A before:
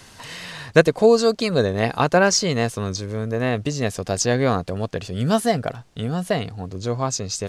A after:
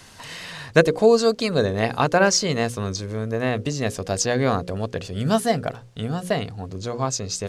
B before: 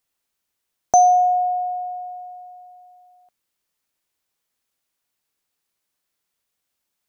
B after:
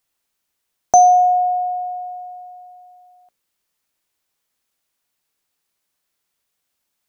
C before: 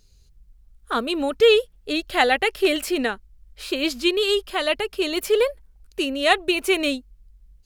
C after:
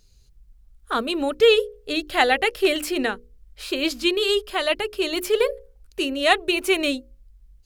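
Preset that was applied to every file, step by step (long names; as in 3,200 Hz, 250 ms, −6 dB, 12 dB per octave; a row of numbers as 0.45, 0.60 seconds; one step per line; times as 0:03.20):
mains-hum notches 60/120/180/240/300/360/420/480/540 Hz
normalise the peak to −2 dBFS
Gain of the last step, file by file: −0.5, +3.0, 0.0 decibels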